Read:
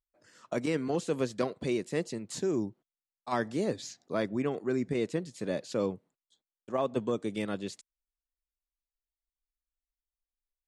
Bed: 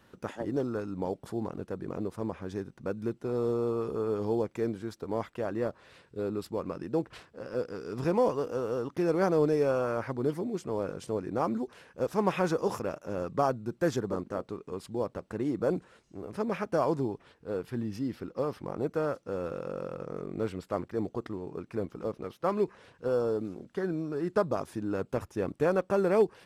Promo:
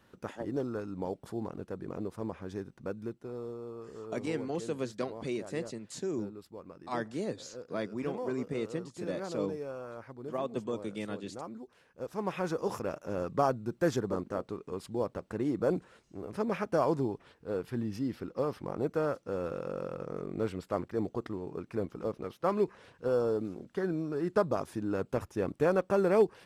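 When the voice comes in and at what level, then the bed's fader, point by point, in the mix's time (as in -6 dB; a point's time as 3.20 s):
3.60 s, -4.5 dB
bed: 2.84 s -3 dB
3.59 s -13 dB
11.59 s -13 dB
12.98 s -0.5 dB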